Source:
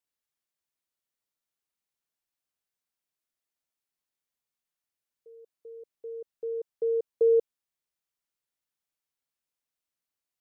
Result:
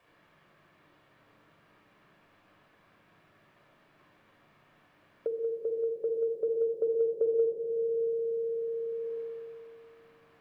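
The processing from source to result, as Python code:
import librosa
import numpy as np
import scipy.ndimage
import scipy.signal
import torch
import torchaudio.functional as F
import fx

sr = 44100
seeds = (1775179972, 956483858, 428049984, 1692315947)

y = fx.notch(x, sr, hz=490.0, q=12.0)
y = fx.echo_wet_lowpass(y, sr, ms=61, feedback_pct=83, hz=430.0, wet_db=-6.5)
y = fx.room_shoebox(y, sr, seeds[0], volume_m3=2700.0, walls='furnished', distance_m=5.7)
y = fx.band_squash(y, sr, depth_pct=100)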